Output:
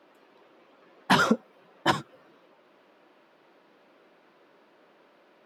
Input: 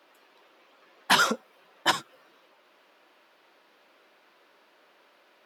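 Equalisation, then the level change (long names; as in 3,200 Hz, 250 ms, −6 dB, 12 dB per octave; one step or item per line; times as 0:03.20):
spectral tilt −2.5 dB per octave
low-shelf EQ 300 Hz +5.5 dB
0.0 dB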